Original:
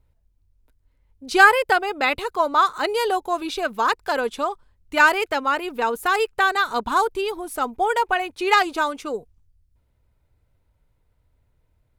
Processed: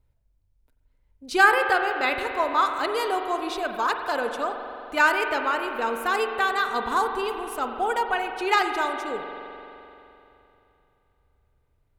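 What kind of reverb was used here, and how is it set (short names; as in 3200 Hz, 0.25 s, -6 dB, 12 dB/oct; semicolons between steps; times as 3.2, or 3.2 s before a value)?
spring tank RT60 3 s, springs 43 ms, chirp 60 ms, DRR 5 dB; gain -4.5 dB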